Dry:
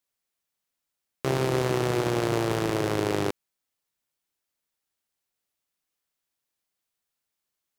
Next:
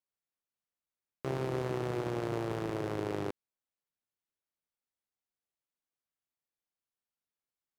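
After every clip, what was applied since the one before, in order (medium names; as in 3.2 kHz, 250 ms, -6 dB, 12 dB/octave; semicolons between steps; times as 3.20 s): treble shelf 2.7 kHz -9 dB; trim -8.5 dB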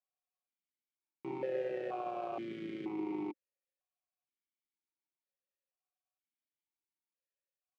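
comb 5.4 ms; stepped vowel filter 2.1 Hz; trim +5.5 dB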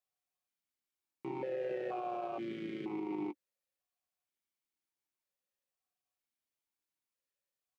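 peak limiter -32 dBFS, peak gain reduction 5.5 dB; doubling 14 ms -13.5 dB; trim +1.5 dB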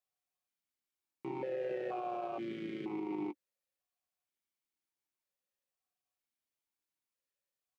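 no audible change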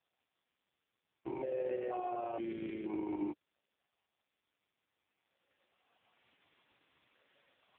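recorder AGC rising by 10 dB/s; trim +1.5 dB; AMR-NB 4.75 kbps 8 kHz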